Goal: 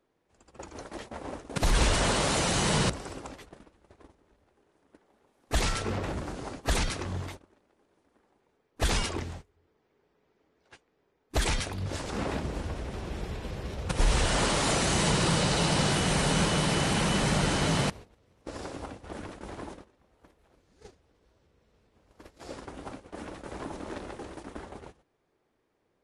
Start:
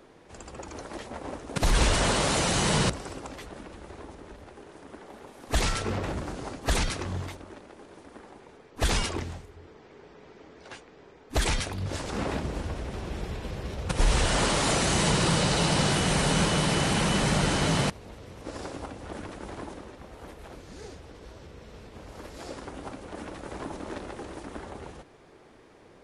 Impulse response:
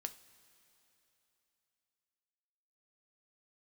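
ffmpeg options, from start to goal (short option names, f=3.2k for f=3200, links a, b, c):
-af "agate=range=-19dB:threshold=-40dB:ratio=16:detection=peak,volume=-1.5dB"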